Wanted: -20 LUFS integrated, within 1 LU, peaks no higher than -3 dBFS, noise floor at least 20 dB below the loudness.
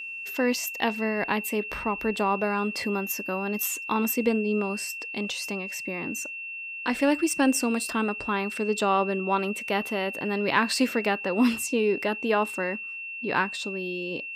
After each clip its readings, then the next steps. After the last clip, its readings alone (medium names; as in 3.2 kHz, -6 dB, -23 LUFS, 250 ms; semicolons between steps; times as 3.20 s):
steady tone 2.7 kHz; tone level -34 dBFS; loudness -27.0 LUFS; peak level -7.5 dBFS; loudness target -20.0 LUFS
-> band-stop 2.7 kHz, Q 30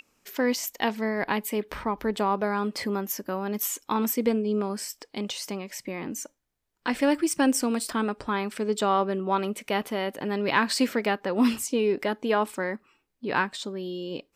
steady tone not found; loudness -27.5 LUFS; peak level -8.0 dBFS; loudness target -20.0 LUFS
-> trim +7.5 dB; peak limiter -3 dBFS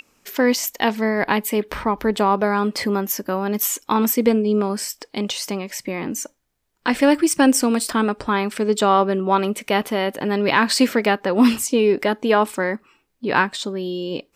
loudness -20.0 LUFS; peak level -3.0 dBFS; noise floor -67 dBFS